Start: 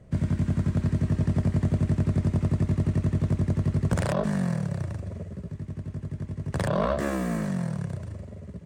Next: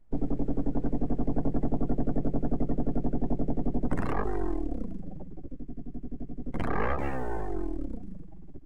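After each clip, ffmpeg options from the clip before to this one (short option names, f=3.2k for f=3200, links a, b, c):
-af "aeval=exprs='abs(val(0))':c=same,afftdn=nr=19:nf=-35"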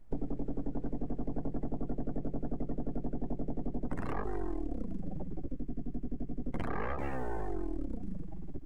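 -af "acompressor=threshold=-34dB:ratio=6,volume=4.5dB"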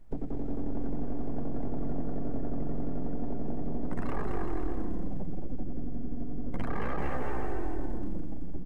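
-filter_complex "[0:a]asplit=2[a][b];[b]asoftclip=type=hard:threshold=-37.5dB,volume=-7.5dB[c];[a][c]amix=inputs=2:normalize=0,aecho=1:1:220|385|508.8|601.6|671.2:0.631|0.398|0.251|0.158|0.1"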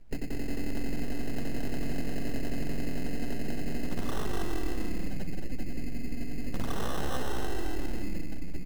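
-af "acrusher=samples=19:mix=1:aa=0.000001"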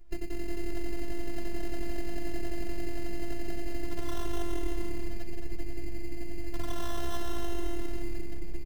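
-filter_complex "[0:a]afftfilt=real='hypot(re,im)*cos(PI*b)':imag='0':win_size=512:overlap=0.75,asplit=4[a][b][c][d];[b]adelay=491,afreqshift=34,volume=-24dB[e];[c]adelay=982,afreqshift=68,volume=-29.4dB[f];[d]adelay=1473,afreqshift=102,volume=-34.7dB[g];[a][e][f][g]amix=inputs=4:normalize=0,volume=1.5dB"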